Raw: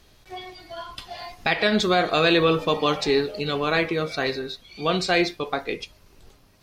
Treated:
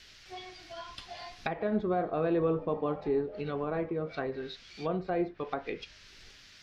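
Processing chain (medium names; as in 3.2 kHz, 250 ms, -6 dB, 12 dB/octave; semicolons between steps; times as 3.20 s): band noise 1.4–5.6 kHz -48 dBFS; low-pass that closes with the level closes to 840 Hz, closed at -20.5 dBFS; trim -7.5 dB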